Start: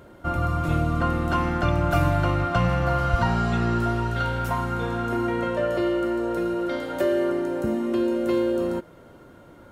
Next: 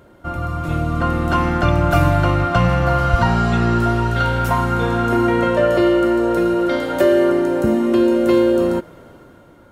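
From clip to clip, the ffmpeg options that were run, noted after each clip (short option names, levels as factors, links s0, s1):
-af "dynaudnorm=f=220:g=9:m=2.99"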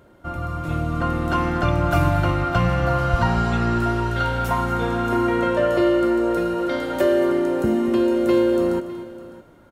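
-af "aecho=1:1:237|606:0.2|0.119,volume=0.631"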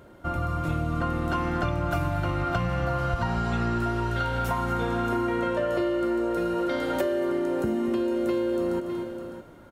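-af "acompressor=threshold=0.0562:ratio=6,volume=1.19"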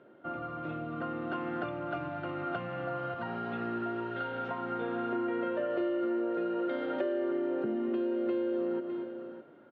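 -af "highpass=f=160:w=0.5412,highpass=f=160:w=1.3066,equalizer=f=180:t=q:w=4:g=-7,equalizer=f=400:t=q:w=4:g=3,equalizer=f=1000:t=q:w=4:g=-6,equalizer=f=2200:t=q:w=4:g=-5,lowpass=f=3000:w=0.5412,lowpass=f=3000:w=1.3066,volume=0.501"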